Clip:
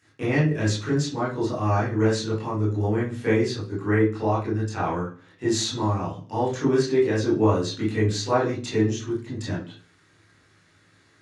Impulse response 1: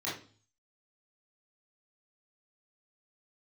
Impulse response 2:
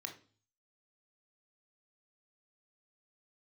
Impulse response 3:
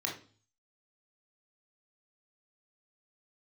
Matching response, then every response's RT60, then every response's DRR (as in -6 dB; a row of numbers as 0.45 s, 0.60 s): 1; 0.40 s, 0.40 s, 0.40 s; -9.0 dB, 3.5 dB, -1.5 dB